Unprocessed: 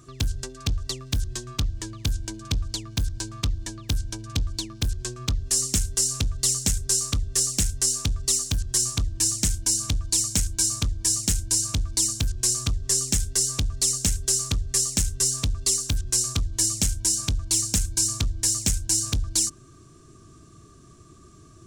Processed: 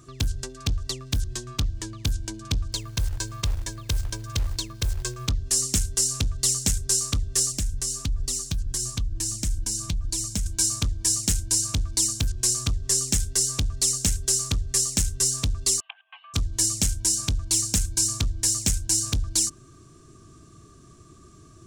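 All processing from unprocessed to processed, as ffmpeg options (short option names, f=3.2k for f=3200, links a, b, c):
-filter_complex "[0:a]asettb=1/sr,asplit=3[a][b][c];[a]atrim=end=2.724[d];[b]atrim=start=2.72:end=5.28,asetpts=PTS-STARTPTS,afade=t=in:d=0.004:c=qsin,afade=t=out:st=2.556:d=0.004:c=qsin,aecho=1:1:1.9:0.62,atrim=end_sample=112896,acompressor=threshold=-21dB:ratio=4:attack=3.2:release=140:knee=1:detection=peak,acrusher=bits=5:mode=log:mix=0:aa=0.000001[e];[c]atrim=start=5.276[f];[d][e]acrossfade=d=0.004:c1=hsin:c2=qsin[g];[g][f]acrossfade=d=0.004:c1=qsin:c2=hsin,asettb=1/sr,asplit=3[h][i][j];[h]atrim=end=7.524[k];[i]atrim=start=7.52:end=10.46,asetpts=PTS-STARTPTS,afade=t=in:d=0.004:c=qsin,afade=t=out:st=2.936:d=0.004:c=qsin,lowshelf=f=150:g=11.5,acompressor=threshold=-18dB:ratio=4:attack=3.2:release=140:knee=1:detection=peak,flanger=delay=2.9:depth=3.1:regen=60:speed=1.5:shape=sinusoidal[l];[j]atrim=start=10.456[m];[k][l]acrossfade=d=0.004:c1=hsin:c2=qsin[n];[n][m]acrossfade=d=0.004:c1=qsin:c2=hsin,asettb=1/sr,asplit=3[o][p][q];[o]atrim=end=15.804[r];[p]atrim=start=15.8:end=16.34,asetpts=PTS-STARTPTS,afade=t=in:d=0.004:c=qsin,afade=t=out:st=0.536:d=0.004:c=qsin,asuperpass=centerf=1500:order=20:qfactor=0.62,equalizer=f=1.9k:t=o:w=0.27:g=-9,bandreject=f=1.4k:w=5.9[s];[q]atrim=start=16.336[t];[r][s]acrossfade=d=0.004:c1=hsin:c2=qsin[u];[u][t]acrossfade=d=0.004:c1=qsin:c2=hsin"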